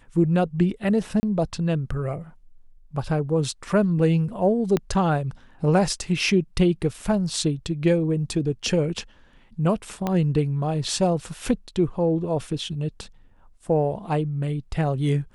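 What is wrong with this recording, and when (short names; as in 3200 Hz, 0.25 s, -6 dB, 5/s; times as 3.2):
1.2–1.23 gap 30 ms
4.77 pop -11 dBFS
10.07 pop -12 dBFS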